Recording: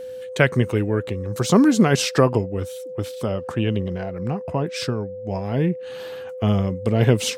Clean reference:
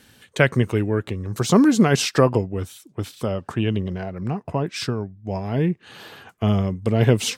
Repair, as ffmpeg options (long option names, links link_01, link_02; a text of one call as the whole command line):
ffmpeg -i in.wav -af "bandreject=frequency=510:width=30" out.wav